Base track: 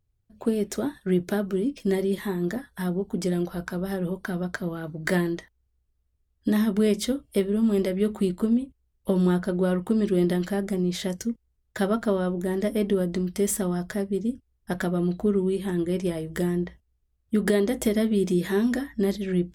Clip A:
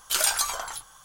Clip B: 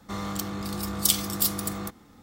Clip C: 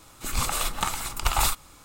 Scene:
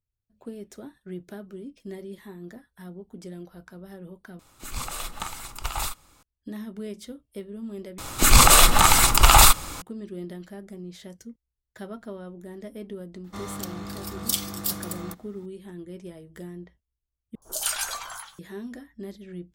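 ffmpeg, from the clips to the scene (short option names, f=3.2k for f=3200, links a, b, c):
-filter_complex "[3:a]asplit=2[a][b];[0:a]volume=-14dB[c];[b]alimiter=level_in=16dB:limit=-1dB:release=50:level=0:latency=1[d];[1:a]acrossover=split=750|4800[e][f][g];[g]adelay=70[h];[f]adelay=170[i];[e][i][h]amix=inputs=3:normalize=0[j];[c]asplit=4[k][l][m][n];[k]atrim=end=4.394[o];[a]atrim=end=1.84,asetpts=PTS-STARTPTS,volume=-6.5dB[p];[l]atrim=start=6.226:end=7.984[q];[d]atrim=end=1.84,asetpts=PTS-STARTPTS,volume=-1dB[r];[m]atrim=start=9.816:end=17.354[s];[j]atrim=end=1.04,asetpts=PTS-STARTPTS,volume=-3dB[t];[n]atrim=start=18.386[u];[2:a]atrim=end=2.22,asetpts=PTS-STARTPTS,volume=-3.5dB,afade=t=in:d=0.004:c=hsin,afade=t=out:st=2.216:d=0.004:c=hsin,adelay=13240[v];[o][p]acrossfade=d=0.004:c1=hsin:c2=hsin[w];[w][q]acrossfade=d=0.004:c1=hsin:c2=hsin[x];[x][r]acrossfade=d=0.004:c1=hsin:c2=hsin[y];[y][s]acrossfade=d=0.004:c1=hsin:c2=hsin[z];[z][t]acrossfade=d=0.004:c1=hsin:c2=hsin[aa];[aa][u]acrossfade=d=0.004:c1=hsin:c2=hsin[ab];[ab][v]amix=inputs=2:normalize=0"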